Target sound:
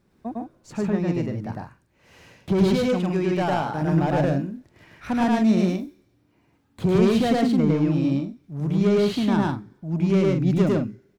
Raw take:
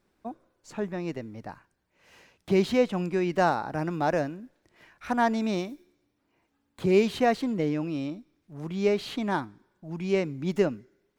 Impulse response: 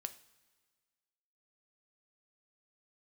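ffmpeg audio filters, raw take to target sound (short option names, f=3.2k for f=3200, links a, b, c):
-filter_complex "[0:a]asettb=1/sr,asplit=3[a][b][c];[a]atrim=end=2.734[d];[b]atrim=start=2.73:end=3.82,asetpts=PTS-STARTPTS,afade=t=in:d=0.004:c=qsin,afade=t=out:st=1.086:d=0.004:c=qsin,lowshelf=f=270:g=-9.5[e];[c]atrim=start=3.816[f];[d][e]acrossfade=d=0.004:c1=hsin:c2=qsin[g];[g][f]acrossfade=d=0.004:c1=qsin:c2=hsin,asoftclip=type=tanh:threshold=-23.5dB,equalizer=f=120:t=o:w=2.4:g=10.5,aecho=1:1:105|148.7:1|0.447,volume=1.5dB"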